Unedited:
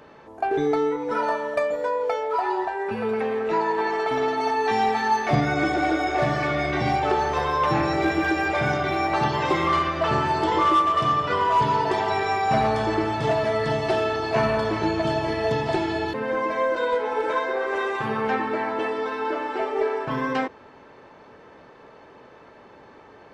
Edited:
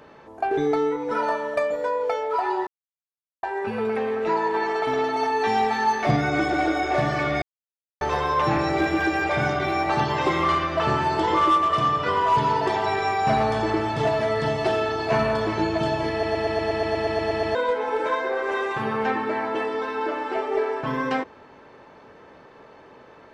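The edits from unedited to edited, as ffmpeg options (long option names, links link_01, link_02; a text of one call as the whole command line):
ffmpeg -i in.wav -filter_complex "[0:a]asplit=16[link_01][link_02][link_03][link_04][link_05][link_06][link_07][link_08][link_09][link_10][link_11][link_12][link_13][link_14][link_15][link_16];[link_01]atrim=end=2.67,asetpts=PTS-STARTPTS,afade=type=out:start_time=2.666:duration=0.004:curve=hsin,apad=pad_dur=0.76[link_17];[link_02]atrim=start=2.67:end=6.66,asetpts=PTS-STARTPTS,afade=type=in:duration=0.004:curve=hsin,afade=type=out:start_time=3.986:duration=0.004:curve=hsin[link_18];[link_03]atrim=start=6.66:end=7.25,asetpts=PTS-STARTPTS,volume=0[link_19];[link_04]atrim=start=7.25:end=15.472,asetpts=PTS-STARTPTS,afade=type=in:duration=0.004:curve=hsin[link_20];[link_05]atrim=start=15.348:end=15.472[link_21];[link_06]atrim=start=15.348:end=15.472[link_22];[link_07]atrim=start=15.348:end=15.472[link_23];[link_08]atrim=start=15.348:end=15.472[link_24];[link_09]atrim=start=15.348:end=15.472[link_25];[link_10]atrim=start=15.348:end=15.472[link_26];[link_11]atrim=start=15.348:end=15.472[link_27];[link_12]atrim=start=15.348:end=15.472[link_28];[link_13]atrim=start=15.348:end=15.472[link_29];[link_14]atrim=start=15.348:end=15.472[link_30];[link_15]atrim=start=15.348:end=15.472[link_31];[link_16]atrim=start=16.788[link_32];[link_17][link_18][link_19][link_20]concat=n=4:v=0:a=1[link_33];[link_33][link_21]acrossfade=duration=0.004:curve1=hsin:curve2=hsin[link_34];[link_34][link_22]acrossfade=duration=0.004:curve1=hsin:curve2=hsin[link_35];[link_35][link_23]acrossfade=duration=0.004:curve1=hsin:curve2=hsin[link_36];[link_36][link_24]acrossfade=duration=0.004:curve1=hsin:curve2=hsin[link_37];[link_37][link_25]acrossfade=duration=0.004:curve1=hsin:curve2=hsin[link_38];[link_38][link_26]acrossfade=duration=0.004:curve1=hsin:curve2=hsin[link_39];[link_39][link_27]acrossfade=duration=0.004:curve1=hsin:curve2=hsin[link_40];[link_40][link_28]acrossfade=duration=0.004:curve1=hsin:curve2=hsin[link_41];[link_41][link_29]acrossfade=duration=0.004:curve1=hsin:curve2=hsin[link_42];[link_42][link_30]acrossfade=duration=0.004:curve1=hsin:curve2=hsin[link_43];[link_43][link_31]acrossfade=duration=0.004:curve1=hsin:curve2=hsin[link_44];[link_44][link_32]acrossfade=duration=0.004:curve1=hsin:curve2=hsin" out.wav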